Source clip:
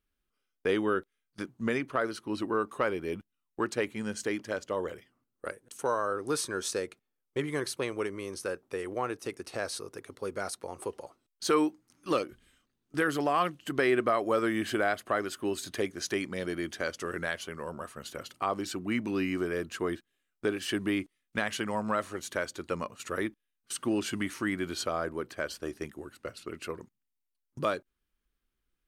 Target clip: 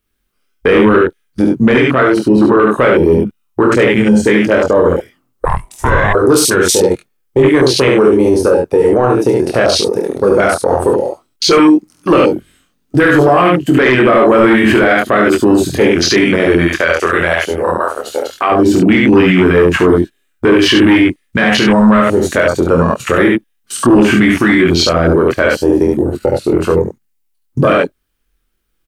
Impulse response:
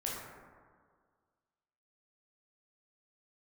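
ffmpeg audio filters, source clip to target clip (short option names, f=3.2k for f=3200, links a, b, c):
-filter_complex "[0:a]flanger=delay=22.5:depth=2.1:speed=0.15,asplit=2[a][b];[b]aecho=0:1:48|71:0.335|0.631[c];[a][c]amix=inputs=2:normalize=0,asettb=1/sr,asplit=3[d][e][f];[d]atrim=end=5.454[g];[e]atrim=start=5.45:end=6.15,asetpts=PTS-STARTPTS,afade=t=in:d=0.004:c=qsin,afade=t=out:st=0.696:d=0.004:c=qsin,aeval=exprs='val(0)*sin(2*PI*510*n/s)':c=same[h];[f]atrim=start=6.146[i];[g][h]acrossfade=d=0.004:c1=hsin:c2=qsin[j];[j][i]acrossfade=d=0.004:c1=qsin:c2=hsin,asplit=3[k][l][m];[k]afade=t=out:st=16.66:d=0.02[n];[l]equalizer=f=160:t=o:w=1.9:g=-13.5,afade=t=in:st=16.66:d=0.02,afade=t=out:st=18.5:d=0.02[o];[m]afade=t=in:st=18.5:d=0.02[p];[n][o][p]amix=inputs=3:normalize=0,acrossover=split=690|1400[q][r][s];[q]asoftclip=type=hard:threshold=-29.5dB[t];[r]acompressor=threshold=-49dB:ratio=6[u];[t][u][s]amix=inputs=3:normalize=0,highshelf=f=10k:g=5.5,afwtdn=0.00891,asoftclip=type=tanh:threshold=-21dB,alimiter=level_in=32.5dB:limit=-1dB:release=50:level=0:latency=1,volume=-1dB"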